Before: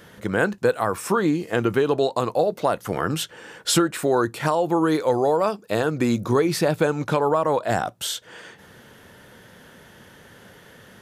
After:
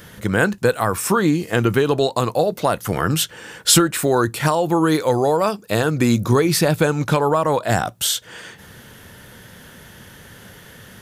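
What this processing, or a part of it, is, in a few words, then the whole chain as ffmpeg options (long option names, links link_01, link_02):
smiley-face EQ: -af "lowshelf=frequency=160:gain=5,equalizer=frequency=490:width_type=o:width=3:gain=-5,highshelf=frequency=9900:gain=7,volume=6.5dB"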